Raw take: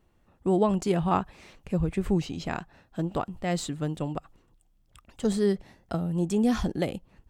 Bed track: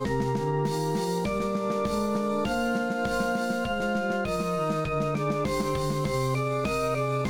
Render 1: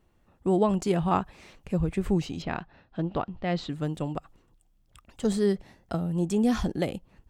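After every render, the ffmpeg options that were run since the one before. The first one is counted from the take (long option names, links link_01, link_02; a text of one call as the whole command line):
ffmpeg -i in.wav -filter_complex "[0:a]asettb=1/sr,asplit=3[link_01][link_02][link_03];[link_01]atrim=end=2.424[link_04];[link_02]atrim=start=2.42:end=3.7,asetpts=PTS-STARTPTS,afade=type=in:duration=0.004:curve=qsin,afade=type=out:start_time=1.276:duration=0.004:curve=qsin,lowpass=frequency=4500:width=0.5412,lowpass=frequency=4500:width=1.3066[link_05];[link_03]atrim=start=3.696[link_06];[link_04][link_05]acrossfade=duration=0.004:curve1=hsin:curve2=qsin[link_07];[link_07][link_06]acrossfade=duration=0.004:curve1=qsin:curve2=hsin" out.wav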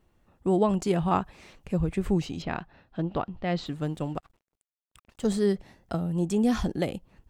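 ffmpeg -i in.wav -filter_complex "[0:a]asettb=1/sr,asplit=3[link_01][link_02][link_03];[link_01]atrim=end=3.664[link_04];[link_02]atrim=start=3.66:end=5.42,asetpts=PTS-STARTPTS,afade=type=in:duration=0.004:curve=qsin,afade=type=out:start_time=1.756:duration=0.004:curve=qsin,aeval=exprs='sgn(val(0))*max(abs(val(0))-0.0015,0)':channel_layout=same[link_05];[link_03]atrim=start=5.416[link_06];[link_04][link_05]acrossfade=duration=0.004:curve1=hsin:curve2=qsin[link_07];[link_07][link_06]acrossfade=duration=0.004:curve1=qsin:curve2=hsin" out.wav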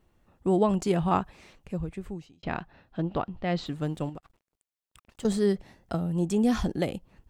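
ffmpeg -i in.wav -filter_complex "[0:a]asettb=1/sr,asplit=3[link_01][link_02][link_03];[link_01]atrim=end=4.094[link_04];[link_02]atrim=start=4.09:end=5.25,asetpts=PTS-STARTPTS,afade=type=in:duration=0.004:curve=qsin,afade=type=out:start_time=1.156:duration=0.004:curve=qsin,acompressor=threshold=-36dB:ratio=10:attack=3.2:release=140:knee=1:detection=peak[link_05];[link_03]atrim=start=5.246[link_06];[link_04][link_05]acrossfade=duration=0.004:curve1=hsin:curve2=qsin[link_07];[link_07][link_06]acrossfade=duration=0.004:curve1=qsin:curve2=hsin,asplit=2[link_08][link_09];[link_08]atrim=end=2.43,asetpts=PTS-STARTPTS,afade=type=out:start_time=1.17:duration=1.26[link_10];[link_09]atrim=start=2.43,asetpts=PTS-STARTPTS,afade=type=in:duration=0.004:curve=hsin[link_11];[link_10][link_11]concat=n=2:v=0:a=1" out.wav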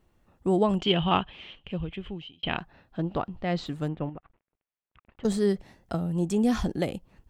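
ffmpeg -i in.wav -filter_complex "[0:a]asettb=1/sr,asplit=3[link_01][link_02][link_03];[link_01]atrim=end=0.794[link_04];[link_02]atrim=start=0.79:end=2.58,asetpts=PTS-STARTPTS,afade=type=in:duration=0.004:curve=qsin,afade=type=out:start_time=1.786:duration=0.004:curve=qsin,lowpass=frequency=3100:width_type=q:width=13[link_05];[link_03]atrim=start=2.576[link_06];[link_04][link_05]acrossfade=duration=0.004:curve1=hsin:curve2=qsin[link_07];[link_07][link_06]acrossfade=duration=0.004:curve1=qsin:curve2=hsin,asettb=1/sr,asplit=3[link_08][link_09][link_10];[link_08]atrim=end=3.884[link_11];[link_09]atrim=start=3.88:end=5.24,asetpts=PTS-STARTPTS,afade=type=in:duration=0.004:curve=qsin,afade=type=out:start_time=1.356:duration=0.004:curve=qsin,lowpass=frequency=2600:width=0.5412,lowpass=frequency=2600:width=1.3066[link_12];[link_10]atrim=start=5.236[link_13];[link_11][link_12]acrossfade=duration=0.004:curve1=hsin:curve2=qsin[link_14];[link_14][link_13]acrossfade=duration=0.004:curve1=qsin:curve2=hsin" out.wav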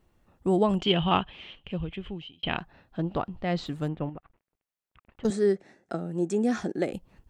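ffmpeg -i in.wav -filter_complex "[0:a]asettb=1/sr,asplit=3[link_01][link_02][link_03];[link_01]atrim=end=5.304[link_04];[link_02]atrim=start=5.3:end=6.93,asetpts=PTS-STARTPTS,afade=type=in:duration=0.004:curve=qsin,afade=type=out:start_time=1.626:duration=0.004:curve=qsin,highpass=230,equalizer=frequency=370:width_type=q:width=4:gain=5,equalizer=frequency=1000:width_type=q:width=4:gain=-8,equalizer=frequency=1600:width_type=q:width=4:gain=4,equalizer=frequency=3100:width_type=q:width=4:gain=-9,equalizer=frequency=4700:width_type=q:width=4:gain=-6,lowpass=frequency=8600:width=0.5412,lowpass=frequency=8600:width=1.3066[link_05];[link_03]atrim=start=6.926[link_06];[link_04][link_05]acrossfade=duration=0.004:curve1=hsin:curve2=qsin[link_07];[link_07][link_06]acrossfade=duration=0.004:curve1=qsin:curve2=hsin" out.wav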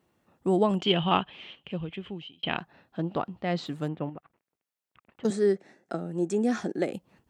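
ffmpeg -i in.wav -af "highpass=140" out.wav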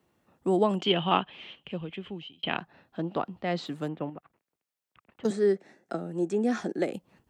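ffmpeg -i in.wav -filter_complex "[0:a]acrossover=split=160|600|4200[link_01][link_02][link_03][link_04];[link_01]acompressor=threshold=-50dB:ratio=6[link_05];[link_04]alimiter=level_in=13dB:limit=-24dB:level=0:latency=1:release=377,volume=-13dB[link_06];[link_05][link_02][link_03][link_06]amix=inputs=4:normalize=0" out.wav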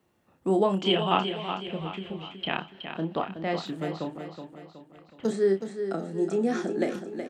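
ffmpeg -i in.wav -filter_complex "[0:a]asplit=2[link_01][link_02];[link_02]adelay=31,volume=-7dB[link_03];[link_01][link_03]amix=inputs=2:normalize=0,asplit=2[link_04][link_05];[link_05]aecho=0:1:371|742|1113|1484|1855:0.376|0.173|0.0795|0.0366|0.0168[link_06];[link_04][link_06]amix=inputs=2:normalize=0" out.wav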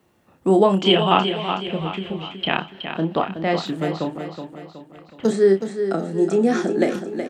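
ffmpeg -i in.wav -af "volume=8dB,alimiter=limit=-2dB:level=0:latency=1" out.wav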